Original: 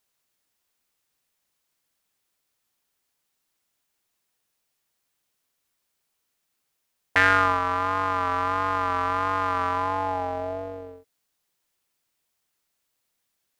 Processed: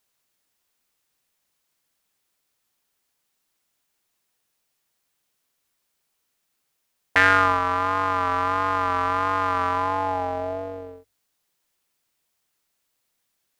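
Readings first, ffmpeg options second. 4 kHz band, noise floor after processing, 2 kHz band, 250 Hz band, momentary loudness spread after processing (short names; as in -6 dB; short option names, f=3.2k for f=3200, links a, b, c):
+2.0 dB, -75 dBFS, +2.0 dB, +2.0 dB, 12 LU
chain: -af "bandreject=f=50:t=h:w=6,bandreject=f=100:t=h:w=6,volume=2dB"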